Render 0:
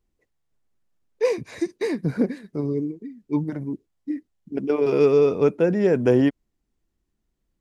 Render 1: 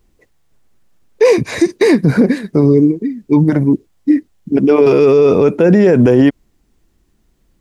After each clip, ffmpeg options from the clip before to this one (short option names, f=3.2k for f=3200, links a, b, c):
-af "alimiter=level_in=18.5dB:limit=-1dB:release=50:level=0:latency=1,volume=-1dB"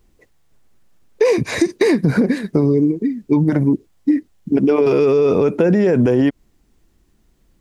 -af "acompressor=threshold=-11dB:ratio=6"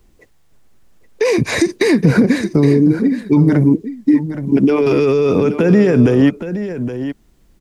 -filter_complex "[0:a]acrossover=split=290|1300[a][b][c];[b]alimiter=limit=-17dB:level=0:latency=1[d];[a][d][c]amix=inputs=3:normalize=0,aecho=1:1:819:0.282,volume=4.5dB"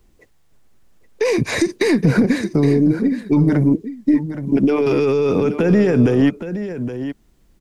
-af "aeval=exprs='0.891*(cos(1*acos(clip(val(0)/0.891,-1,1)))-cos(1*PI/2))+0.0631*(cos(2*acos(clip(val(0)/0.891,-1,1)))-cos(2*PI/2))':c=same,volume=-3dB"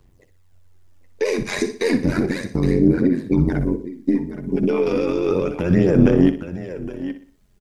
-filter_complex "[0:a]tremolo=f=90:d=0.919,aphaser=in_gain=1:out_gain=1:delay=4.9:decay=0.46:speed=0.33:type=sinusoidal,asplit=2[a][b];[b]aecho=0:1:61|122|183|244:0.251|0.098|0.0382|0.0149[c];[a][c]amix=inputs=2:normalize=0,volume=-1dB"